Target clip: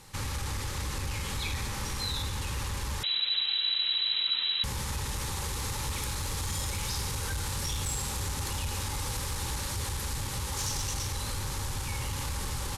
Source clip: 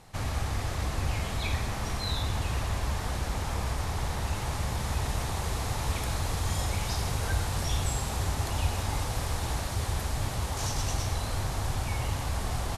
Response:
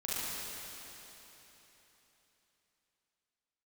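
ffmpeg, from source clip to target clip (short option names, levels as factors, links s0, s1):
-filter_complex "[0:a]asoftclip=type=tanh:threshold=0.0794,alimiter=level_in=1.41:limit=0.0631:level=0:latency=1:release=106,volume=0.708,asettb=1/sr,asplit=3[s0][s1][s2];[s0]atrim=end=3.034[s3];[s1]atrim=start=3.03:end=4.64,asetpts=PTS-STARTPTS,afade=t=in:d=0.004:c=qsin,afade=t=out:st=1.606:d=0.004:c=qsin,lowpass=f=3400:t=q:w=0.5098,lowpass=f=3400:t=q:w=0.6013,lowpass=f=3400:t=q:w=0.9,lowpass=f=3400:t=q:w=2.563,afreqshift=-4000[s4];[s2]atrim=start=4.636[s5];[s3][s4]acrossfade=d=0.004:c1=hsin:c2=qsin[s6];[s6][s5]acrossfade=d=0.004:c1=qsin:c2=hsin,asuperstop=centerf=680:order=12:qfactor=4,highshelf=f=2900:g=8"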